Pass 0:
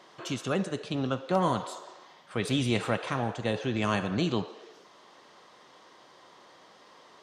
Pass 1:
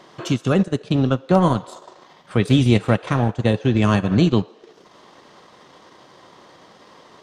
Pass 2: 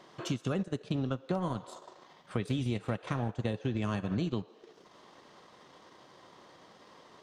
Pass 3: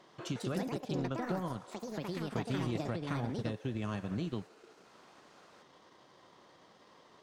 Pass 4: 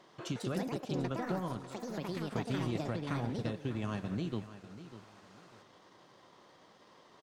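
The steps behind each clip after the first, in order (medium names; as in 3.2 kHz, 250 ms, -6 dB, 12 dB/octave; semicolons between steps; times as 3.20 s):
transient shaper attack +2 dB, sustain -10 dB; bass shelf 280 Hz +10.5 dB; trim +6 dB
compression 6:1, threshold -20 dBFS, peak gain reduction 10.5 dB; trim -8.5 dB
ever faster or slower copies 212 ms, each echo +5 st, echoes 2; trim -4.5 dB
feedback delay 596 ms, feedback 27%, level -14 dB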